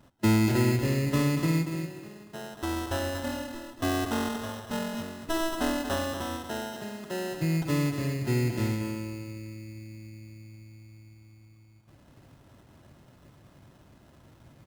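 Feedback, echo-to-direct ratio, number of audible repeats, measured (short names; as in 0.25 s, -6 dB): 20%, -7.5 dB, 2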